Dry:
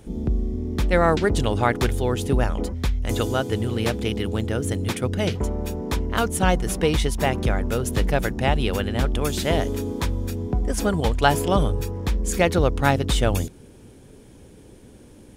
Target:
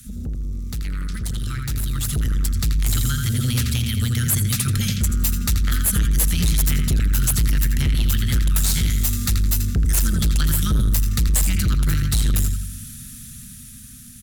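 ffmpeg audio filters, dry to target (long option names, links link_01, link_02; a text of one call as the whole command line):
ffmpeg -i in.wav -filter_complex "[0:a]afftfilt=real='re*(1-between(b*sr/4096,240,1100))':imag='im*(1-between(b*sr/4096,240,1100))':win_size=4096:overlap=0.75,adynamicequalizer=threshold=0.00794:dfrequency=290:dqfactor=0.88:tfrequency=290:tqfactor=0.88:attack=5:release=100:ratio=0.375:range=2.5:mode=cutabove:tftype=bell,acrossover=split=160[link_01][link_02];[link_02]acompressor=threshold=-37dB:ratio=6[link_03];[link_01][link_03]amix=inputs=2:normalize=0,asplit=2[link_04][link_05];[link_05]adelay=90,lowpass=frequency=3900:poles=1,volume=-5dB,asplit=2[link_06][link_07];[link_07]adelay=90,lowpass=frequency=3900:poles=1,volume=0.48,asplit=2[link_08][link_09];[link_09]adelay=90,lowpass=frequency=3900:poles=1,volume=0.48,asplit=2[link_10][link_11];[link_11]adelay=90,lowpass=frequency=3900:poles=1,volume=0.48,asplit=2[link_12][link_13];[link_13]adelay=90,lowpass=frequency=3900:poles=1,volume=0.48,asplit=2[link_14][link_15];[link_15]adelay=90,lowpass=frequency=3900:poles=1,volume=0.48[link_16];[link_04][link_06][link_08][link_10][link_12][link_14][link_16]amix=inputs=7:normalize=0,acrossover=split=330|2900[link_17][link_18][link_19];[link_19]crystalizer=i=4.5:c=0[link_20];[link_17][link_18][link_20]amix=inputs=3:normalize=0,asetrate=47628,aresample=44100,asoftclip=type=tanh:threshold=-24dB,dynaudnorm=framelen=650:gausssize=7:maxgain=9dB,volume=1dB" out.wav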